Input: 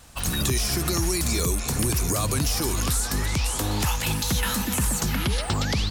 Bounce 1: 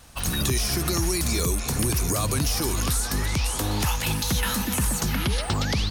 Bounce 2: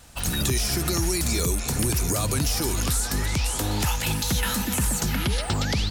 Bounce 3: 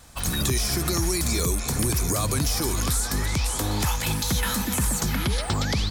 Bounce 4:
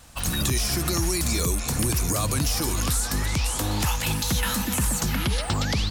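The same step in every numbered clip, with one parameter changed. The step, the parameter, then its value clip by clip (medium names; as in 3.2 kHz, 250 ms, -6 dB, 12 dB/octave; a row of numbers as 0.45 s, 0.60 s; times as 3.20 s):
band-stop, frequency: 7.5 kHz, 1.1 kHz, 2.8 kHz, 400 Hz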